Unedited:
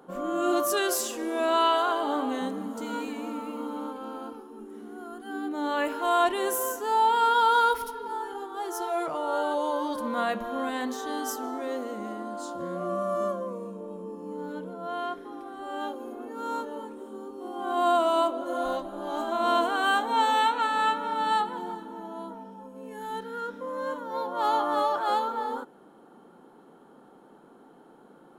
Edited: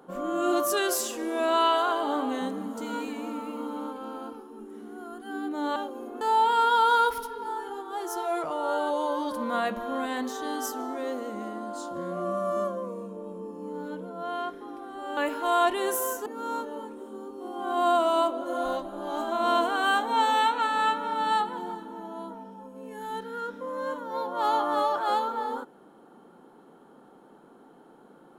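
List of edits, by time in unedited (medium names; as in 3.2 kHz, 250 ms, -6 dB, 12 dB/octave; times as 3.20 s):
5.76–6.85 s: swap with 15.81–16.26 s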